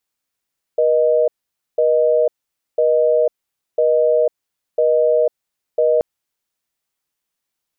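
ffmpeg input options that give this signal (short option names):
-f lavfi -i "aevalsrc='0.188*(sin(2*PI*480*t)+sin(2*PI*620*t))*clip(min(mod(t,1),0.5-mod(t,1))/0.005,0,1)':d=5.23:s=44100"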